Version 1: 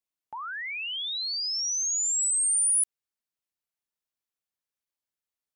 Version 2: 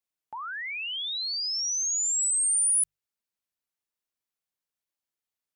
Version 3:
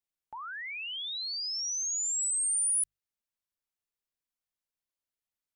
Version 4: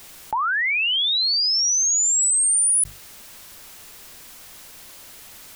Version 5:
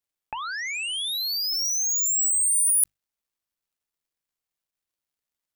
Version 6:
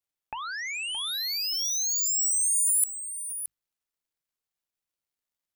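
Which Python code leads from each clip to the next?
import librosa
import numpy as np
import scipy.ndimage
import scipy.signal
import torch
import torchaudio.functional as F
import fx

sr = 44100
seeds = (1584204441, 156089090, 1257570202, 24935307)

y1 = fx.hum_notches(x, sr, base_hz=50, count=3)
y2 = fx.low_shelf(y1, sr, hz=74.0, db=10.0)
y2 = y2 * 10.0 ** (-4.5 / 20.0)
y3 = fx.env_flatten(y2, sr, amount_pct=70)
y3 = y3 * 10.0 ** (9.0 / 20.0)
y4 = fx.power_curve(y3, sr, exponent=3.0)
y4 = y4 * 10.0 ** (4.5 / 20.0)
y5 = y4 + 10.0 ** (-11.0 / 20.0) * np.pad(y4, (int(621 * sr / 1000.0), 0))[:len(y4)]
y5 = y5 * 10.0 ** (-3.0 / 20.0)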